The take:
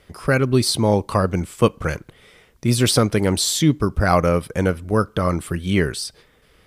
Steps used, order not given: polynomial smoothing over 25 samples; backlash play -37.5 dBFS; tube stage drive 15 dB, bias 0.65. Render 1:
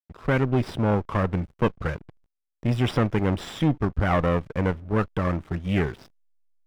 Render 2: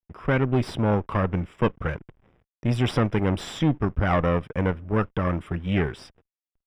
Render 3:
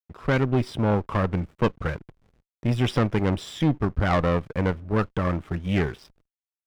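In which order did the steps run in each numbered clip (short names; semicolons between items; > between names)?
tube stage > polynomial smoothing > backlash; backlash > tube stage > polynomial smoothing; polynomial smoothing > backlash > tube stage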